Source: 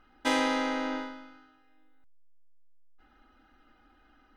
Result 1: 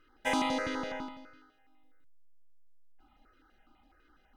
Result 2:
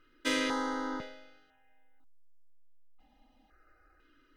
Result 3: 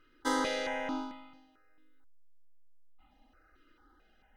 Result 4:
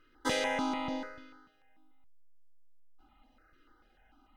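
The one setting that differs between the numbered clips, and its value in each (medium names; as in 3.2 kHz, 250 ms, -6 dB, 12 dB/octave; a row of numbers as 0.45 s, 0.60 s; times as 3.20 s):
stepped phaser, rate: 12 Hz, 2 Hz, 4.5 Hz, 6.8 Hz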